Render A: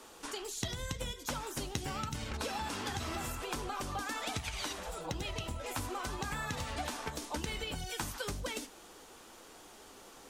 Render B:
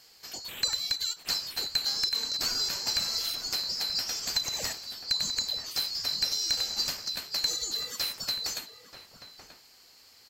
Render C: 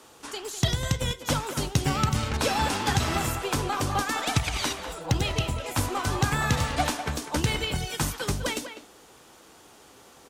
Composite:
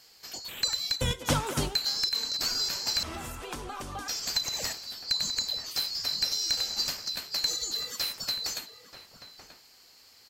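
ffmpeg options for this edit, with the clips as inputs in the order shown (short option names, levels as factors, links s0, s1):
-filter_complex "[1:a]asplit=3[s0][s1][s2];[s0]atrim=end=1.012[s3];[2:a]atrim=start=1.008:end=1.752[s4];[s1]atrim=start=1.748:end=3.032[s5];[0:a]atrim=start=3.028:end=4.082[s6];[s2]atrim=start=4.078[s7];[s3][s4]acrossfade=d=0.004:c1=hsin:c2=hsin[s8];[s8][s5]acrossfade=d=0.004:c1=hsin:c2=hsin[s9];[s9][s6]acrossfade=d=0.004:c1=hsin:c2=hsin[s10];[s10][s7]acrossfade=d=0.004:c1=hsin:c2=hsin"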